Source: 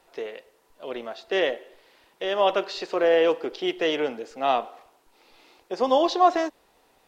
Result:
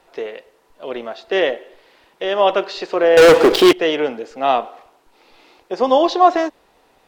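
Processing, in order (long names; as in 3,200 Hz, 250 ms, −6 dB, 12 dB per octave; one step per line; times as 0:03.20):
high-shelf EQ 5,600 Hz −7 dB
0:03.17–0:03.73: leveller curve on the samples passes 5
level +6.5 dB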